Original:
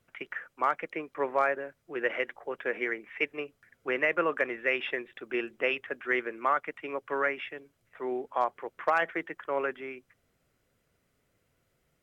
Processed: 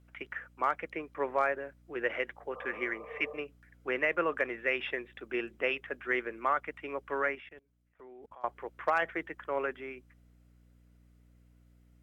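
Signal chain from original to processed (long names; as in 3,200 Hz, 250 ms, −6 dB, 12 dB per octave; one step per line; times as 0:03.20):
mains hum 60 Hz, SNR 26 dB
0:02.58–0:03.34: healed spectral selection 450–1,300 Hz both
0:07.35–0:08.44: output level in coarse steps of 24 dB
level −2.5 dB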